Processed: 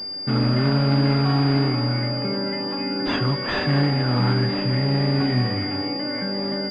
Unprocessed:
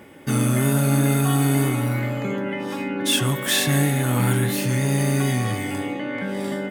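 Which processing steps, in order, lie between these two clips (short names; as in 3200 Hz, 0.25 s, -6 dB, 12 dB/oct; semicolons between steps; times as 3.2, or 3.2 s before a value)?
5.17–5.64 doubler 40 ms -5.5 dB; pulse-width modulation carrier 4800 Hz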